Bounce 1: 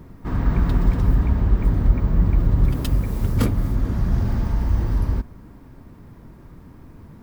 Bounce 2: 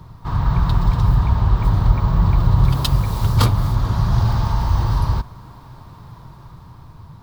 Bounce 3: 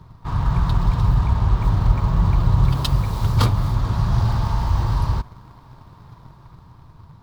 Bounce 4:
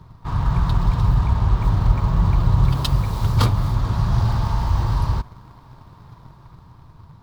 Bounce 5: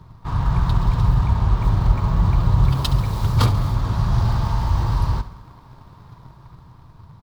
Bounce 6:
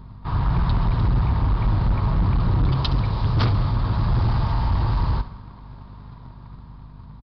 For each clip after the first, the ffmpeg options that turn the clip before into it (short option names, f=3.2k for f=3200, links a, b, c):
-filter_complex "[0:a]equalizer=f=125:t=o:w=1:g=10,equalizer=f=250:t=o:w=1:g=-11,equalizer=f=500:t=o:w=1:g=-4,equalizer=f=1k:t=o:w=1:g=11,equalizer=f=2k:t=o:w=1:g=-6,equalizer=f=4k:t=o:w=1:g=11,acrossover=split=200[a][b];[b]dynaudnorm=f=390:g=7:m=5dB[c];[a][c]amix=inputs=2:normalize=0"
-filter_complex "[0:a]highshelf=f=9.3k:g=-7,asplit=2[a][b];[b]acrusher=bits=4:mix=0:aa=0.5,volume=-7.5dB[c];[a][c]amix=inputs=2:normalize=0,volume=-5dB"
-af anull
-af "aecho=1:1:69|138|207|276|345:0.178|0.0978|0.0538|0.0296|0.0163"
-af "aeval=exprs='val(0)+0.00891*(sin(2*PI*50*n/s)+sin(2*PI*2*50*n/s)/2+sin(2*PI*3*50*n/s)/3+sin(2*PI*4*50*n/s)/4+sin(2*PI*5*50*n/s)/5)':c=same,aresample=11025,asoftclip=type=hard:threshold=-15.5dB,aresample=44100"